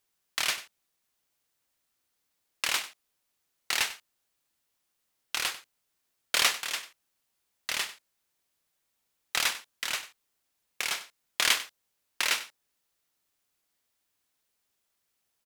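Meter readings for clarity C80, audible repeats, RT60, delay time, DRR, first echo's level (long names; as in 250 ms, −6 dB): no reverb audible, 1, no reverb audible, 96 ms, no reverb audible, −15.0 dB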